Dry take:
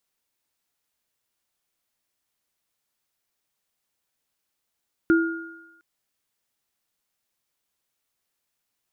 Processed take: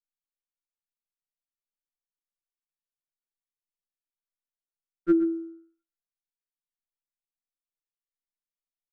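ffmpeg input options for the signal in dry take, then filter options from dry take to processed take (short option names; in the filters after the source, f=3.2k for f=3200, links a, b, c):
-f lavfi -i "aevalsrc='0.224*pow(10,-3*t/0.82)*sin(2*PI*330*t)+0.0891*pow(10,-3*t/1.2)*sin(2*PI*1420*t)':d=0.71:s=44100"
-af "anlmdn=0.158,aecho=1:1:124:0.2,afftfilt=real='re*2.83*eq(mod(b,8),0)':imag='im*2.83*eq(mod(b,8),0)':win_size=2048:overlap=0.75"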